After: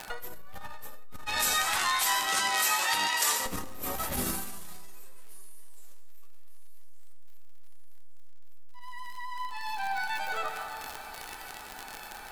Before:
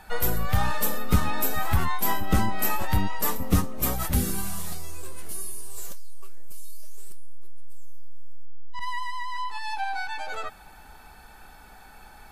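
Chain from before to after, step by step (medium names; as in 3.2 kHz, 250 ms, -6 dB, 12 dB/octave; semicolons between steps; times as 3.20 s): octave divider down 2 oct, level -4 dB; tone controls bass -13 dB, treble -1 dB; feedback echo behind a high-pass 1173 ms, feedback 70%, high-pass 2.3 kHz, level -16 dB; peak limiter -25 dBFS, peak gain reduction 11.5 dB; flange 0.31 Hz, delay 9.4 ms, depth 2.8 ms, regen -54%; crackle 58 per s -33 dBFS; 1.26–3.46 s: frequency weighting ITU-R 468; reverberation RT60 2.4 s, pre-delay 68 ms, DRR 7.5 dB; transformer saturation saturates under 130 Hz; trim +9 dB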